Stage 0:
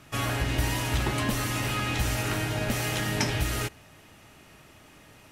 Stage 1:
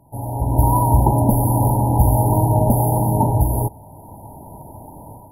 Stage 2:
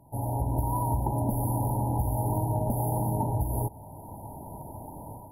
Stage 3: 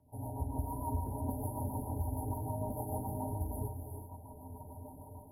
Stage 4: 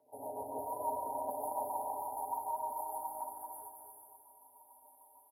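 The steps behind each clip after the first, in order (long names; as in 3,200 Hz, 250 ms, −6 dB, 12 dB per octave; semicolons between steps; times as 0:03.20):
automatic gain control gain up to 16 dB; brick-wall band-stop 1,000–9,800 Hz; graphic EQ with 15 bands 100 Hz +4 dB, 400 Hz −4 dB, 1,000 Hz +9 dB
downward compressor 6 to 1, threshold −21 dBFS, peak gain reduction 12 dB; level −3.5 dB
tuned comb filter 86 Hz, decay 0.18 s, harmonics odd, mix 90%; rotating-speaker cabinet horn 6.7 Hz; reverb whose tail is shaped and stops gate 420 ms rising, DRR 5 dB; level +1 dB
high-pass filter sweep 500 Hz → 1,600 Hz, 0:00.46–0:04.16; on a send: repeating echo 224 ms, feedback 45%, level −6 dB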